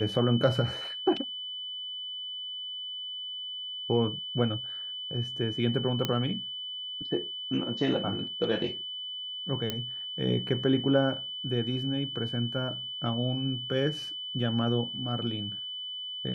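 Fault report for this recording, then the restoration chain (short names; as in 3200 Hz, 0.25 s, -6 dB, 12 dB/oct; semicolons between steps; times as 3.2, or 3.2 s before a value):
tone 3000 Hz -35 dBFS
6.05 pop -13 dBFS
9.7 pop -15 dBFS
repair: de-click; notch 3000 Hz, Q 30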